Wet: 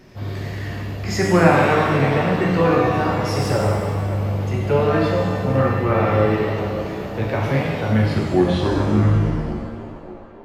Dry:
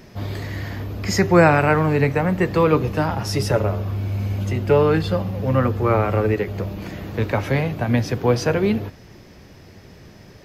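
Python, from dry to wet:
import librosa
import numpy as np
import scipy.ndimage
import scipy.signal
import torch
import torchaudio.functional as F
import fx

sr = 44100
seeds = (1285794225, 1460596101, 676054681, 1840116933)

y = fx.tape_stop_end(x, sr, length_s=2.79)
y = fx.high_shelf(y, sr, hz=7100.0, db=-5.5)
y = fx.echo_banded(y, sr, ms=570, feedback_pct=63, hz=610.0, wet_db=-10.0)
y = fx.rev_shimmer(y, sr, seeds[0], rt60_s=1.4, semitones=7, shimmer_db=-8, drr_db=-2.5)
y = y * 10.0 ** (-4.0 / 20.0)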